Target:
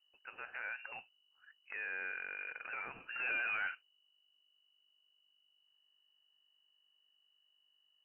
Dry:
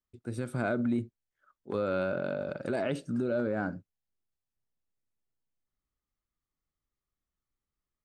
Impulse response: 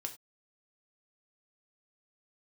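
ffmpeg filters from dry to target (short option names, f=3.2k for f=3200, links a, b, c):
-filter_complex "[0:a]highpass=1.3k,acompressor=threshold=-45dB:ratio=2,alimiter=level_in=14.5dB:limit=-24dB:level=0:latency=1:release=55,volume=-14.5dB,asettb=1/sr,asplit=3[a][b][c];[a]atrim=end=3.004[d];[b]atrim=start=3:end=3.75,asetpts=PTS-STARTPTS,afade=t=in:d=0.004:c=qsin,afade=t=out:st=0.746:d=0.004:c=qsin,aeval=exprs='0.0119*sin(PI/2*1.78*val(0)/0.0119)':c=same[e];[c]atrim=start=3.746[f];[d][e]acrossfade=d=0.004:c1=hsin:c2=qsin[g];[g][f]acrossfade=d=0.004:c1=qsin:c2=hsin,aeval=exprs='val(0)+0.0001*(sin(2*PI*50*n/s)+sin(2*PI*2*50*n/s)/2+sin(2*PI*3*50*n/s)/3+sin(2*PI*4*50*n/s)/4+sin(2*PI*5*50*n/s)/5)':c=same,lowpass=f=2.6k:t=q:w=0.5098,lowpass=f=2.6k:t=q:w=0.6013,lowpass=f=2.6k:t=q:w=0.9,lowpass=f=2.6k:t=q:w=2.563,afreqshift=-3000,volume=6.5dB"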